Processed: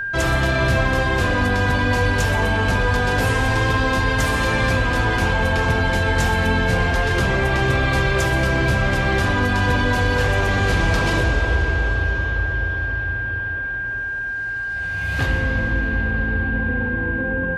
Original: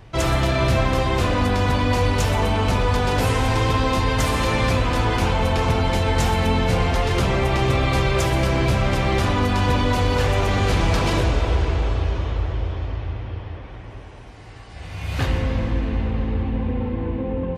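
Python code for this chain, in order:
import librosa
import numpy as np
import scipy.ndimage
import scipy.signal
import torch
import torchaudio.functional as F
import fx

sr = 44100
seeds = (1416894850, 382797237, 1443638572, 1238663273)

y = x + 10.0 ** (-23.0 / 20.0) * np.sin(2.0 * np.pi * 1600.0 * np.arange(len(x)) / sr)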